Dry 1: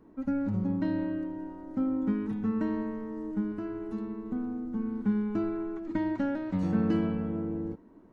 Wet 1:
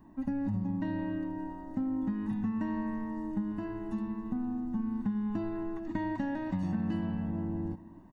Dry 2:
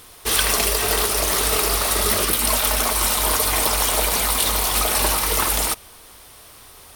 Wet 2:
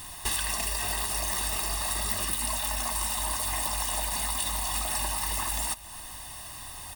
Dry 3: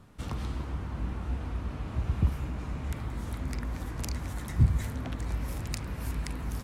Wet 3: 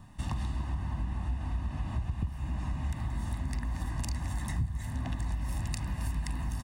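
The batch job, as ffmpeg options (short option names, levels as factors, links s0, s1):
-filter_complex "[0:a]aecho=1:1:1.1:0.79,acompressor=threshold=0.0355:ratio=6,aexciter=amount=1.3:drive=1.9:freq=7900,asplit=2[s0][s1];[s1]aecho=0:1:269:0.112[s2];[s0][s2]amix=inputs=2:normalize=0"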